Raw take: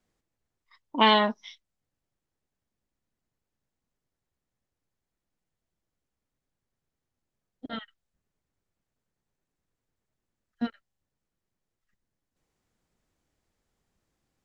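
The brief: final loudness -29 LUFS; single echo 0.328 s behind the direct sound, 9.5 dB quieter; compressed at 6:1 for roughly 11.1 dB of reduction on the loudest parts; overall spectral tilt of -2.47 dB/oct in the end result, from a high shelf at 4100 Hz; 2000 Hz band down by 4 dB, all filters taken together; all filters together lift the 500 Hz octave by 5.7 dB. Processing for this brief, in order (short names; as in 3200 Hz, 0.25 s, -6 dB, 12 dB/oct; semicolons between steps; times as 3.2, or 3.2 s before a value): bell 500 Hz +8 dB; bell 2000 Hz -7 dB; high shelf 4100 Hz +7.5 dB; compressor 6:1, threshold -25 dBFS; echo 0.328 s -9.5 dB; gain +5.5 dB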